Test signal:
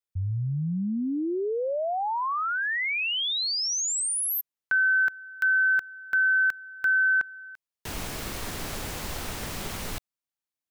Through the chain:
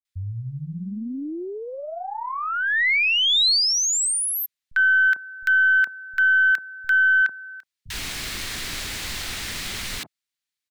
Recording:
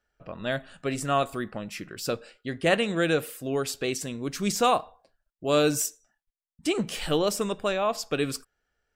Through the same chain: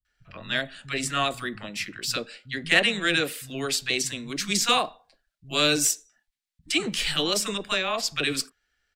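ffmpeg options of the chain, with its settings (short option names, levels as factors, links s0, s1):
-filter_complex "[0:a]equalizer=f=500:t=o:w=1:g=-5,equalizer=f=2000:t=o:w=1:g=7,equalizer=f=4000:t=o:w=1:g=8,equalizer=f=8000:t=o:w=1:g=4,aeval=exprs='0.596*(cos(1*acos(clip(val(0)/0.596,-1,1)))-cos(1*PI/2))+0.0422*(cos(2*acos(clip(val(0)/0.596,-1,1)))-cos(2*PI/2))+0.0119*(cos(4*acos(clip(val(0)/0.596,-1,1)))-cos(4*PI/2))+0.00841*(cos(6*acos(clip(val(0)/0.596,-1,1)))-cos(6*PI/2))':c=same,acrossover=split=150|880[s0][s1][s2];[s2]adelay=50[s3];[s1]adelay=80[s4];[s0][s4][s3]amix=inputs=3:normalize=0"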